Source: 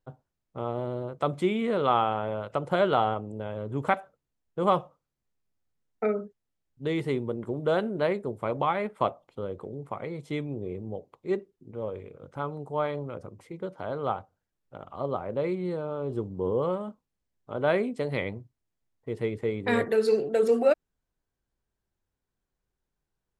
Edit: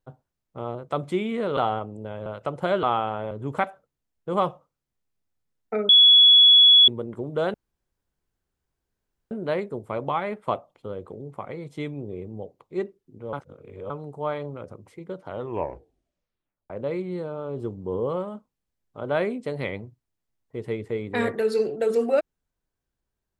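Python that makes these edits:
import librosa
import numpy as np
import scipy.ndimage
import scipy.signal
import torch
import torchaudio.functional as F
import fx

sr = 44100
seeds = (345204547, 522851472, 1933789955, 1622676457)

y = fx.edit(x, sr, fx.cut(start_s=0.75, length_s=0.3),
    fx.swap(start_s=1.87, length_s=0.48, other_s=2.92, other_length_s=0.69),
    fx.bleep(start_s=6.19, length_s=0.99, hz=3380.0, db=-10.0),
    fx.insert_room_tone(at_s=7.84, length_s=1.77),
    fx.reverse_span(start_s=11.86, length_s=0.57),
    fx.tape_stop(start_s=13.79, length_s=1.44), tone=tone)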